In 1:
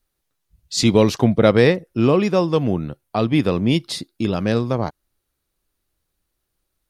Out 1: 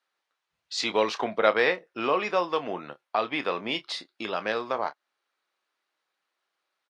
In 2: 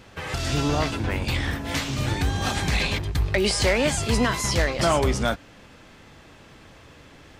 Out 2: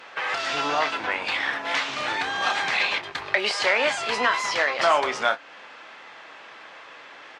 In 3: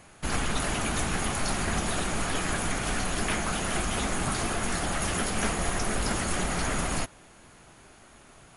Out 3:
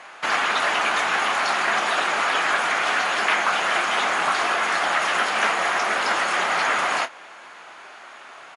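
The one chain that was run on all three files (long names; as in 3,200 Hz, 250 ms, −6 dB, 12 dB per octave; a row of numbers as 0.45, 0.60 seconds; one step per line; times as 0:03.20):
high-pass filter 990 Hz 12 dB per octave
in parallel at +1 dB: downward compressor, threshold −36 dBFS
on the sum: head-to-tape spacing loss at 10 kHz 26 dB
double-tracking delay 28 ms −12 dB
Ogg Vorbis 96 kbit/s 44,100 Hz
normalise the peak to −6 dBFS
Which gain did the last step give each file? +2.5, +8.0, +13.5 decibels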